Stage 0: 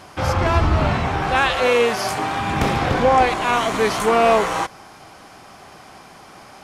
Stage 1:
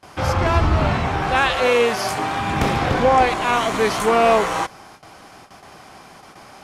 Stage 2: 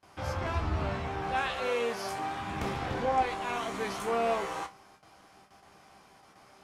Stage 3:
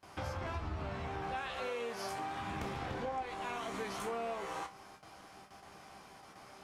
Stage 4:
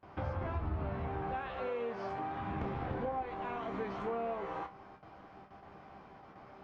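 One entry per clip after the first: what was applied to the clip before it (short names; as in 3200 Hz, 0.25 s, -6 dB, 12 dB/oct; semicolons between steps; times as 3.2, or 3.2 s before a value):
gate with hold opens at -33 dBFS
resonator bank C2 minor, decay 0.21 s; gain -6 dB
compressor 5:1, threshold -40 dBFS, peak gain reduction 16 dB; gain +2.5 dB
tape spacing loss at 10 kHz 41 dB; gain +4.5 dB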